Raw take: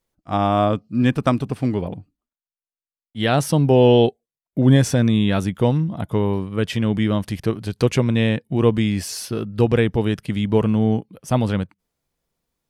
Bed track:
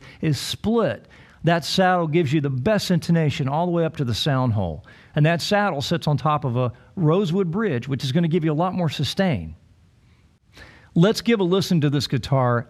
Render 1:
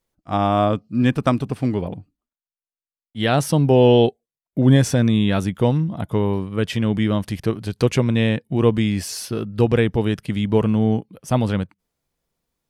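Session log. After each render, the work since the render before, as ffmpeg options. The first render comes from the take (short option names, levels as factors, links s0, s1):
-af anull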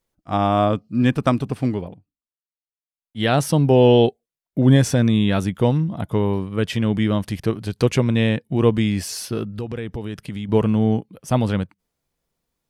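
-filter_complex "[0:a]asettb=1/sr,asplit=3[s0][s1][s2];[s0]atrim=end=9.574[s3];[s1]atrim=start=9.57:end=10.49,asetpts=PTS-STARTPTS,afade=t=in:d=0.004:c=qsin,afade=t=out:st=0.916:d=0.004:c=qsin,acompressor=threshold=0.0501:ratio=4:attack=3.2:release=140:knee=1:detection=peak[s4];[s2]atrim=start=10.486[s5];[s3][s4]acrossfade=d=0.004:c1=hsin:c2=qsin[s6];[s6][s5]acrossfade=d=0.004:c1=qsin:c2=hsin,asplit=3[s7][s8][s9];[s7]atrim=end=2.01,asetpts=PTS-STARTPTS,afade=t=out:st=1.67:d=0.34:silence=0.125893[s10];[s8]atrim=start=2.01:end=2.86,asetpts=PTS-STARTPTS,volume=0.126[s11];[s9]atrim=start=2.86,asetpts=PTS-STARTPTS,afade=t=in:d=0.34:silence=0.125893[s12];[s10][s11][s12]concat=n=3:v=0:a=1"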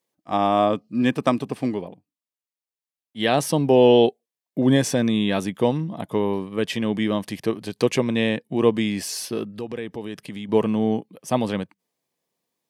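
-af "highpass=220,bandreject=f=1400:w=6.4"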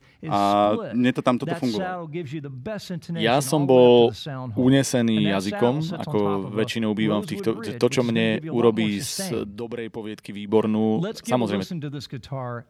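-filter_complex "[1:a]volume=0.266[s0];[0:a][s0]amix=inputs=2:normalize=0"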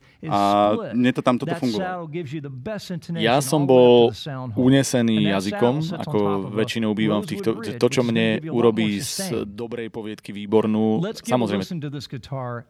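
-af "volume=1.19,alimiter=limit=0.708:level=0:latency=1"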